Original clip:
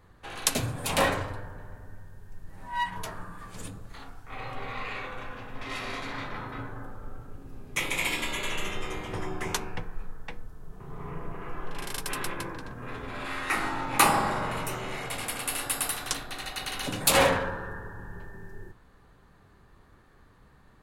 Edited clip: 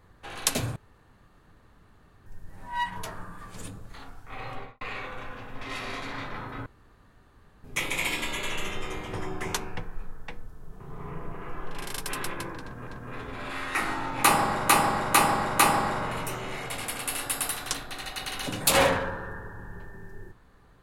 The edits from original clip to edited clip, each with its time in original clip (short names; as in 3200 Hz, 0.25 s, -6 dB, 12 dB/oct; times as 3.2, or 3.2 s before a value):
0.76–2.26 room tone
4.53–4.81 studio fade out
6.66–7.64 room tone
12.62–12.87 loop, 2 plays
13.99–14.44 loop, 4 plays